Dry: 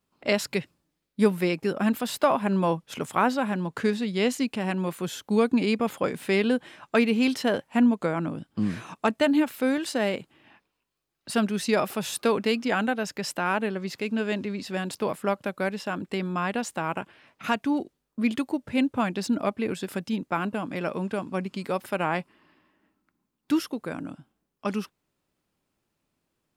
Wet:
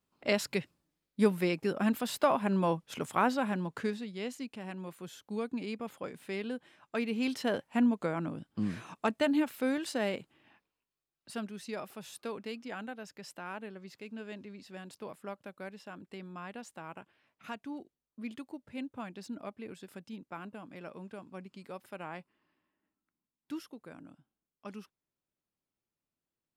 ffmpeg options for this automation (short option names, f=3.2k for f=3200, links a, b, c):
-af "volume=2.5dB,afade=t=out:st=3.55:d=0.57:silence=0.354813,afade=t=in:st=6.87:d=0.65:silence=0.421697,afade=t=out:st=10.15:d=1.41:silence=0.334965"